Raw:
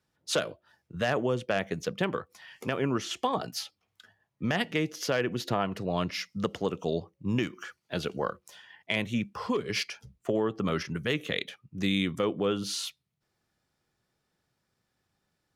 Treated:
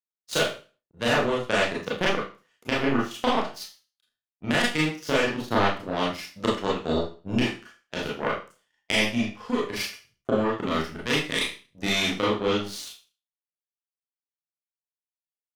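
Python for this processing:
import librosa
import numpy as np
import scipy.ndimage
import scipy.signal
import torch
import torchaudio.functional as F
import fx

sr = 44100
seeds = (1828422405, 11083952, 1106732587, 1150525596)

y = fx.power_curve(x, sr, exponent=2.0)
y = fx.rev_schroeder(y, sr, rt60_s=0.35, comb_ms=26, drr_db=-6.0)
y = F.gain(torch.from_numpy(y), 5.5).numpy()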